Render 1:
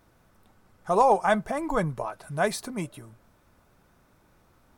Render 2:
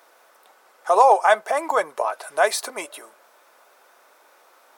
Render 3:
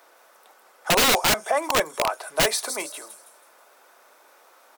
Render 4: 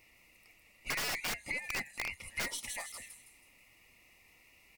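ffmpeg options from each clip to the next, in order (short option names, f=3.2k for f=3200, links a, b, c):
-filter_complex "[0:a]asplit=2[a][b];[b]acompressor=threshold=-30dB:ratio=6,volume=1dB[c];[a][c]amix=inputs=2:normalize=0,highpass=f=480:w=0.5412,highpass=f=480:w=1.3066,volume=4.5dB"
-filter_complex "[0:a]acrossover=split=400|4600[a][b][c];[a]asplit=2[d][e];[e]adelay=32,volume=-4.5dB[f];[d][f]amix=inputs=2:normalize=0[g];[b]aeval=exprs='(mod(4.73*val(0)+1,2)-1)/4.73':c=same[h];[c]aecho=1:1:162|324|486|648|810:0.708|0.269|0.102|0.0388|0.0148[i];[g][h][i]amix=inputs=3:normalize=0"
-af "afftfilt=real='real(if(lt(b,272),68*(eq(floor(b/68),0)*1+eq(floor(b/68),1)*0+eq(floor(b/68),2)*3+eq(floor(b/68),3)*2)+mod(b,68),b),0)':imag='imag(if(lt(b,272),68*(eq(floor(b/68),0)*1+eq(floor(b/68),1)*0+eq(floor(b/68),2)*3+eq(floor(b/68),3)*2)+mod(b,68),b),0)':win_size=2048:overlap=0.75,aeval=exprs='(tanh(3.98*val(0)+0.4)-tanh(0.4))/3.98':c=same,acompressor=threshold=-32dB:ratio=2,volume=-7dB"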